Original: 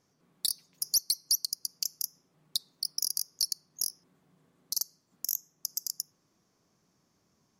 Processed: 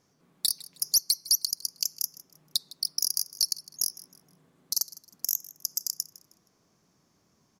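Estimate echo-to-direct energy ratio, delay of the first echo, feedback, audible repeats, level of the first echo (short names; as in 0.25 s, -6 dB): -18.5 dB, 0.157 s, 31%, 2, -19.0 dB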